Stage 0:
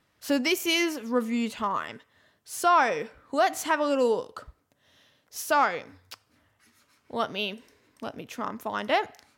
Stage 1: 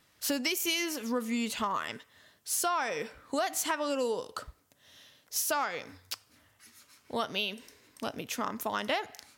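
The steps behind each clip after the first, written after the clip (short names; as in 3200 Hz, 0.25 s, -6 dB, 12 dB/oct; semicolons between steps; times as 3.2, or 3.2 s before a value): high shelf 3000 Hz +10 dB; compressor 5:1, threshold -28 dBFS, peak gain reduction 12 dB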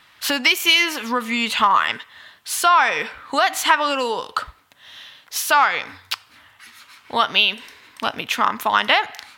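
band shelf 1800 Hz +11.5 dB 2.7 oct; gain +5.5 dB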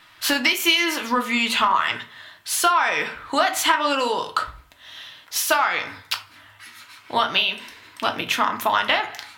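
compressor, threshold -16 dBFS, peak gain reduction 7 dB; on a send at -4.5 dB: reverb RT60 0.35 s, pre-delay 3 ms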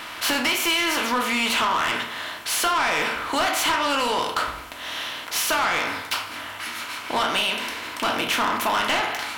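per-bin compression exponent 0.6; soft clip -15 dBFS, distortion -10 dB; gain -2 dB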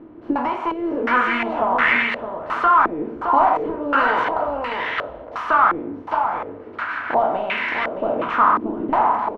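echo 0.617 s -5 dB; stepped low-pass 2.8 Hz 340–2000 Hz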